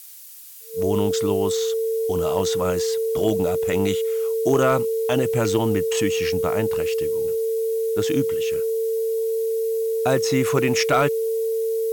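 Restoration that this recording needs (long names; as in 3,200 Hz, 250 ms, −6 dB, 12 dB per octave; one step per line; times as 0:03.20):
clipped peaks rebuilt −9.5 dBFS
notch filter 450 Hz, Q 30
noise reduction from a noise print 30 dB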